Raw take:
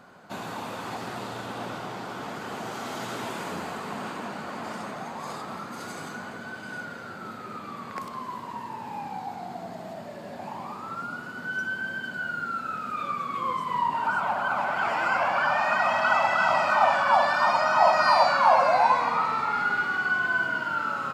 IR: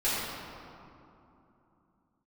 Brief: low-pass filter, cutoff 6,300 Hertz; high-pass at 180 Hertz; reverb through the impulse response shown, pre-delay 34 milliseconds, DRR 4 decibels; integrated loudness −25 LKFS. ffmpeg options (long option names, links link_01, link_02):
-filter_complex "[0:a]highpass=180,lowpass=6300,asplit=2[link_01][link_02];[1:a]atrim=start_sample=2205,adelay=34[link_03];[link_02][link_03]afir=irnorm=-1:irlink=0,volume=-15.5dB[link_04];[link_01][link_04]amix=inputs=2:normalize=0,volume=-0.5dB"